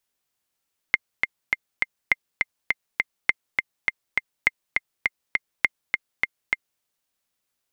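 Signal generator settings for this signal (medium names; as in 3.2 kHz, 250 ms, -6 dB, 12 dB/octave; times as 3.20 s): metronome 204 bpm, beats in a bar 4, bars 5, 2.1 kHz, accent 3.5 dB -3.5 dBFS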